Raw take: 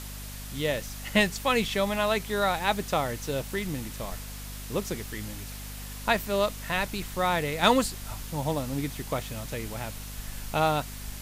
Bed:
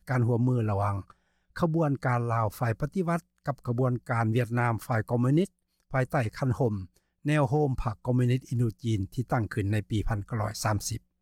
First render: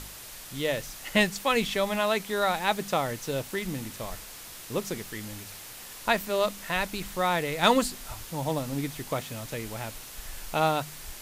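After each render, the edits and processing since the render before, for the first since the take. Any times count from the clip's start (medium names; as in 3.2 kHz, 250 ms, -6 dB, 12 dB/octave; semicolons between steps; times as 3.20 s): de-hum 50 Hz, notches 5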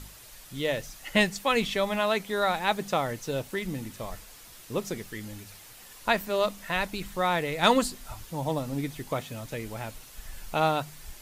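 noise reduction 7 dB, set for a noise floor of -44 dBFS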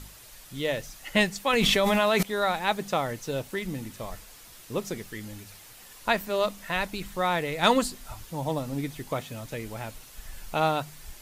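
1.53–2.23 s: level flattener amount 100%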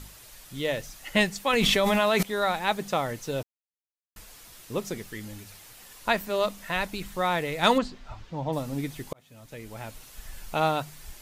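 3.43–4.16 s: mute; 7.78–8.53 s: distance through air 180 m; 9.13–10.05 s: fade in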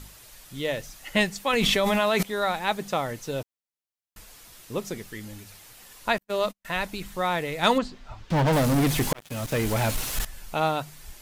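6.18–6.65 s: gate -35 dBFS, range -47 dB; 8.30–10.25 s: waveshaping leveller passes 5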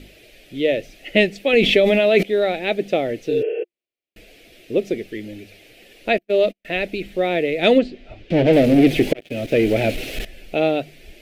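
3.33–3.61 s: spectral replace 330–3300 Hz before; FFT filter 150 Hz 0 dB, 350 Hz +14 dB, 680 Hz +8 dB, 990 Hz -17 dB, 2.4 kHz +10 dB, 7 kHz -10 dB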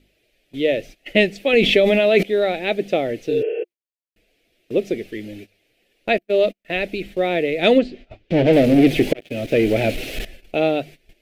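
gate -37 dBFS, range -17 dB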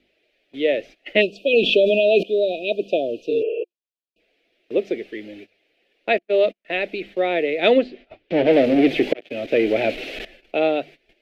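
1.21–4.20 s: spectral selection erased 720–2400 Hz; three-band isolator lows -16 dB, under 250 Hz, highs -17 dB, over 4.7 kHz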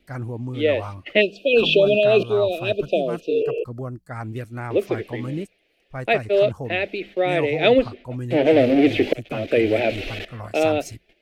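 add bed -5 dB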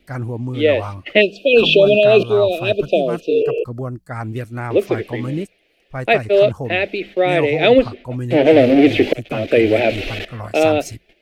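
trim +5 dB; peak limiter -1 dBFS, peak gain reduction 2.5 dB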